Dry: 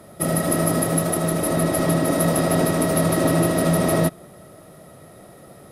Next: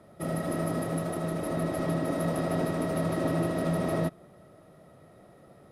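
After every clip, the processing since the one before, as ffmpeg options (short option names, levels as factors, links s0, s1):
-af "lowpass=f=2900:p=1,volume=0.355"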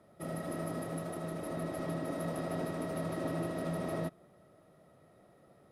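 -af "lowshelf=f=170:g=-3,volume=0.447"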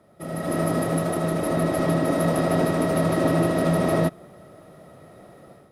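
-af "dynaudnorm=f=290:g=3:m=3.16,volume=1.78"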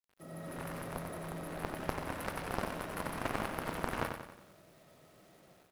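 -af "acrusher=bits=7:mix=0:aa=0.000001,aeval=exprs='0.355*(cos(1*acos(clip(val(0)/0.355,-1,1)))-cos(1*PI/2))+0.158*(cos(3*acos(clip(val(0)/0.355,-1,1)))-cos(3*PI/2))':c=same,aecho=1:1:91|182|273|364|455|546:0.473|0.232|0.114|0.0557|0.0273|0.0134,volume=0.473"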